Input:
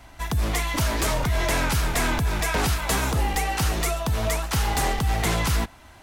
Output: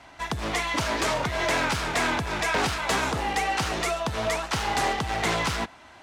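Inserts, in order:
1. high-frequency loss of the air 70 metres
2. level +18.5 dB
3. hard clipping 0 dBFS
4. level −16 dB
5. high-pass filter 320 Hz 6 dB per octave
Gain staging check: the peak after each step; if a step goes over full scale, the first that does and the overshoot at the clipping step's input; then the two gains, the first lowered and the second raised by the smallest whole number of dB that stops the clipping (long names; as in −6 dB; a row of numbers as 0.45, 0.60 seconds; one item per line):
−15.0, +3.5, 0.0, −16.0, −12.5 dBFS
step 2, 3.5 dB
step 2 +14.5 dB, step 4 −12 dB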